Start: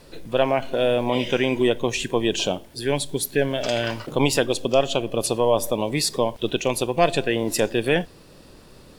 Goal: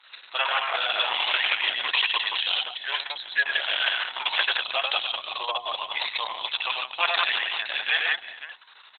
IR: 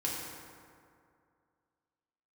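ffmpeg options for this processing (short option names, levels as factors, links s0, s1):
-filter_complex "[0:a]asplit=2[s0][s1];[s1]aecho=0:1:98|106|181|329|396|525:0.708|0.126|0.668|0.224|0.15|0.251[s2];[s0][s2]amix=inputs=2:normalize=0,acrossover=split=7400[s3][s4];[s4]acompressor=threshold=0.00891:ratio=4:attack=1:release=60[s5];[s3][s5]amix=inputs=2:normalize=0,highpass=f=1100:w=0.5412,highpass=f=1100:w=1.3066,highshelf=f=7100:g=5,bandreject=f=2300:w=8.8,volume=1.68" -ar 48000 -c:a libopus -b:a 6k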